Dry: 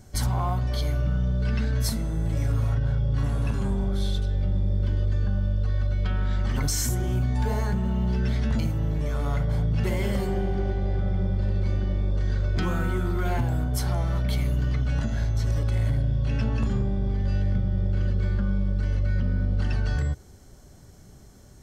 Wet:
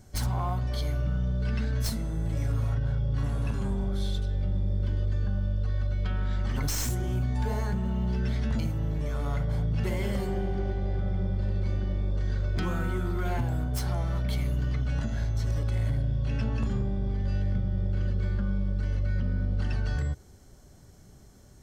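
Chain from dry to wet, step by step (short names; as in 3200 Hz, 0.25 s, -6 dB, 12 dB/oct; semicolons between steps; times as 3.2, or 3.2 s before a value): tracing distortion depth 0.048 ms; gain -3.5 dB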